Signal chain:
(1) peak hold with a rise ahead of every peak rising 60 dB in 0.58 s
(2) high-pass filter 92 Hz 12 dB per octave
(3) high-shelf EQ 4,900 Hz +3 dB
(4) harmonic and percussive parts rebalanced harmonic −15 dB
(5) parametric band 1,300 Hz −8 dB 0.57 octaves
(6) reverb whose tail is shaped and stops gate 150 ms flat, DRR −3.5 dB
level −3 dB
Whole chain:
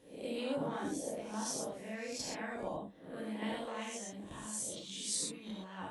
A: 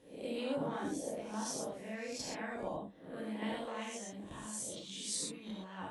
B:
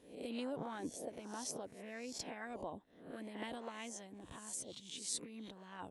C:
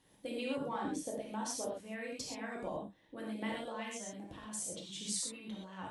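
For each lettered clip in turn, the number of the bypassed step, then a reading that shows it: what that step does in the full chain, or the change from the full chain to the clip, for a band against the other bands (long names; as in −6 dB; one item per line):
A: 3, 8 kHz band −2.0 dB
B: 6, change in crest factor +5.0 dB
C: 1, 1 kHz band +1.5 dB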